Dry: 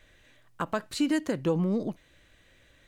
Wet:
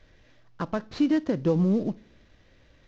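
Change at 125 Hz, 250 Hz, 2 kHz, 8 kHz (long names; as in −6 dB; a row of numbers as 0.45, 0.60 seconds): +4.5 dB, +4.0 dB, −3.5 dB, below −10 dB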